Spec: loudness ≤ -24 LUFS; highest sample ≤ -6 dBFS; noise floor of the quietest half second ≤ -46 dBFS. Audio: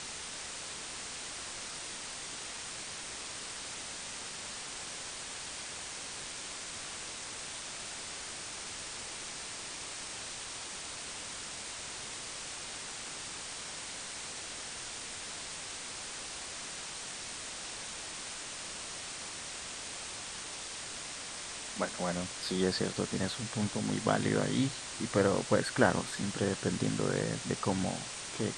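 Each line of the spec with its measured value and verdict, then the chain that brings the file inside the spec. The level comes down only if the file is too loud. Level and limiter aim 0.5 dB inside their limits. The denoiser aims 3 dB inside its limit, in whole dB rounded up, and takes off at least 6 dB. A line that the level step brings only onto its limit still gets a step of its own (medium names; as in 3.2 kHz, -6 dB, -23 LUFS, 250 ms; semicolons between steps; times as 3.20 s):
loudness -36.5 LUFS: pass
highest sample -10.0 dBFS: pass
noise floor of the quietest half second -43 dBFS: fail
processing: noise reduction 6 dB, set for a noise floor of -43 dBFS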